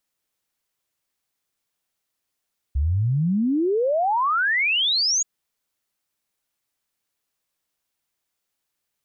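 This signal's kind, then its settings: log sweep 65 Hz -> 6900 Hz 2.48 s -18 dBFS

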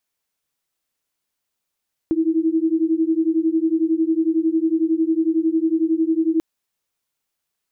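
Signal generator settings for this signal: beating tones 318 Hz, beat 11 Hz, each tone -19 dBFS 4.29 s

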